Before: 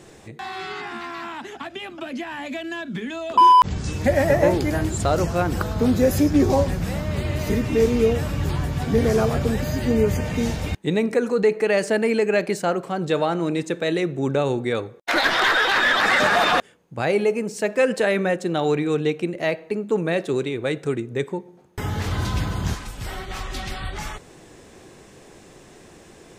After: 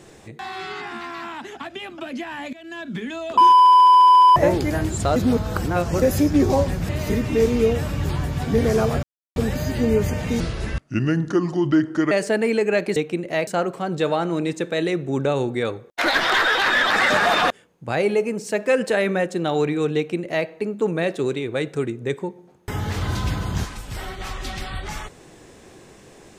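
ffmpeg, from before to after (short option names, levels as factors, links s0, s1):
-filter_complex "[0:a]asplit=22[s0][s1][s2][s3][s4][s5][s6][s7][s8][s9][s10][s11][s12][s13][s14][s15][s16][s17][s18][s19][s20][s21];[s0]atrim=end=2.53,asetpts=PTS-STARTPTS,afade=t=out:st=2.526:d=0.004:c=hsin:silence=0.112202[s22];[s1]atrim=start=2.53:end=3.592,asetpts=PTS-STARTPTS,afade=t=in:d=0.36:silence=0.112202[s23];[s2]atrim=start=3.518:end=3.592[s24];[s3]atrim=start=3.518:end=3.592[s25];[s4]atrim=start=3.518:end=3.592[s26];[s5]atrim=start=3.518:end=3.592[s27];[s6]atrim=start=3.518:end=3.592[s28];[s7]atrim=start=3.518:end=3.592[s29];[s8]atrim=start=3.518:end=3.592[s30];[s9]atrim=start=3.518:end=3.592[s31];[s10]atrim=start=3.518:end=3.592[s32];[s11]atrim=start=3.518:end=3.592[s33];[s12]atrim=start=3.518:end=3.592[s34];[s13]atrim=start=4.358:end=5.162[s35];[s14]atrim=start=5.158:end=6.022,asetpts=PTS-STARTPTS,areverse[s36];[s15]atrim=start=6.018:end=6.892[s37];[s16]atrim=start=7.288:end=9.43,asetpts=PTS-STARTPTS,afade=t=out:st=2.138:d=0.004:c=hsin,apad=pad_dur=0.33[s38];[s17]atrim=start=9.43:end=10.474,asetpts=PTS-STARTPTS,afade=t=in:d=0.004:c=hsin[s39];[s18]atrim=start=10.47:end=11.72,asetpts=PTS-STARTPTS,asetrate=32193,aresample=44100[s40];[s19]atrim=start=11.716:end=12.572[s41];[s20]atrim=start=19.058:end=19.572[s42];[s21]atrim=start=12.568[s43];[s22][s23]concat=n=2:v=0:a=1[s44];[s44][s24]acrossfade=d=0.004:c1=hsin:c2=hsin[s45];[s45][s25]acrossfade=d=0.004:c1=hsin:c2=hsin[s46];[s46][s26]acrossfade=d=0.004:c1=hsin:c2=hsin[s47];[s47][s27]acrossfade=d=0.004:c1=hsin:c2=hsin[s48];[s48][s28]acrossfade=d=0.004:c1=hsin:c2=hsin[s49];[s49][s29]acrossfade=d=0.004:c1=hsin:c2=hsin[s50];[s50][s30]acrossfade=d=0.004:c1=hsin:c2=hsin[s51];[s51][s31]acrossfade=d=0.004:c1=hsin:c2=hsin[s52];[s52][s32]acrossfade=d=0.004:c1=hsin:c2=hsin[s53];[s53][s33]acrossfade=d=0.004:c1=hsin:c2=hsin[s54];[s54][s34]acrossfade=d=0.004:c1=hsin:c2=hsin[s55];[s55][s35]acrossfade=d=0.004:c1=hsin:c2=hsin[s56];[s56][s36]acrossfade=d=0.004:c1=hsin:c2=hsin[s57];[s57][s37]acrossfade=d=0.004:c1=hsin:c2=hsin[s58];[s38][s39]concat=n=2:v=0:a=1[s59];[s58][s59]acrossfade=d=0.004:c1=hsin:c2=hsin[s60];[s60][s40]acrossfade=d=0.004:c1=hsin:c2=hsin[s61];[s61][s41]acrossfade=d=0.004:c1=hsin:c2=hsin[s62];[s62][s42]acrossfade=d=0.004:c1=hsin:c2=hsin[s63];[s63][s43]acrossfade=d=0.004:c1=hsin:c2=hsin"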